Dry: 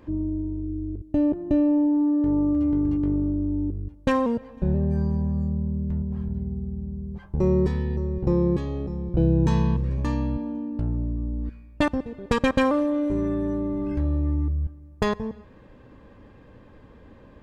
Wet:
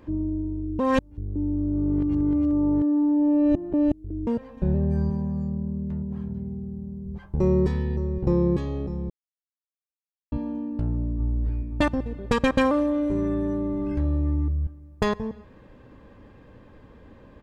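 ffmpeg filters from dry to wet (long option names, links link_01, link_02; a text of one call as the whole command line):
ffmpeg -i in.wav -filter_complex "[0:a]asettb=1/sr,asplit=3[link_01][link_02][link_03];[link_01]atrim=end=5.104[link_04];[link_02]atrim=start=5.1:end=7.06,asetpts=PTS-STARTPTS,afade=type=in:duration=0.004:curve=qsin,afade=type=out:start_time=1.956:duration=0.004:curve=qsin,highpass=110[link_05];[link_03]atrim=start=7.056[link_06];[link_04][link_05]acrossfade=duration=0.004:curve1=hsin:curve2=qsin[link_07];[link_07][link_06]acrossfade=duration=0.004:curve1=qsin:curve2=hsin,asplit=2[link_08][link_09];[link_09]afade=type=in:start_time=10.93:duration=0.01,afade=type=out:start_time=11.36:duration=0.01,aecho=0:1:260|520|780|1040|1300|1560|1820|2080|2340|2600|2860|3120:0.749894|0.524926|0.367448|0.257214|0.18005|0.126035|0.0882243|0.061757|0.0432299|0.0302609|0.0211827|0.0148279[link_10];[link_08][link_10]amix=inputs=2:normalize=0,asplit=5[link_11][link_12][link_13][link_14][link_15];[link_11]atrim=end=0.792[link_16];[link_12]atrim=start=0.788:end=4.272,asetpts=PTS-STARTPTS,areverse[link_17];[link_13]atrim=start=4.268:end=9.1,asetpts=PTS-STARTPTS,afade=type=out:start_time=4.828:duration=0.004:curve=hsin[link_18];[link_14]atrim=start=9.1:end=10.32,asetpts=PTS-STARTPTS,volume=0[link_19];[link_15]atrim=start=10.32,asetpts=PTS-STARTPTS,afade=type=in:duration=0.004:curve=hsin[link_20];[link_16][link_17]acrossfade=duration=0.004:curve1=hsin:curve2=hsin[link_21];[link_18][link_19][link_20]concat=n=3:v=0:a=1[link_22];[link_21][link_22]acrossfade=duration=0.004:curve1=hsin:curve2=hsin" out.wav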